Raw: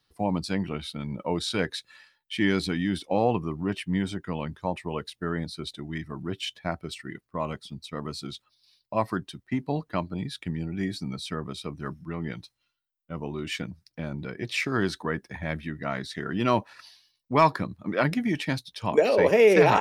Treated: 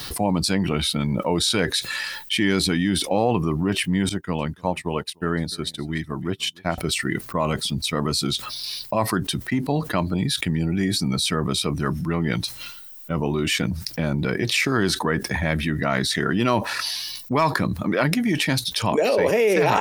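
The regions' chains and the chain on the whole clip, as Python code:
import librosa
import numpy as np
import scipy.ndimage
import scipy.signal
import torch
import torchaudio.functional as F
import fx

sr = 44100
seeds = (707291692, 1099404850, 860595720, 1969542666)

y = fx.chain(x, sr, fx.echo_single(ms=296, db=-21.5),
    fx.upward_expand(threshold_db=-52.0, expansion=2.5), at=(4.09, 6.78))
y = fx.high_shelf(y, sr, hz=7300.0, db=11.0)
y = fx.env_flatten(y, sr, amount_pct=70)
y = y * 10.0 ** (-3.0 / 20.0)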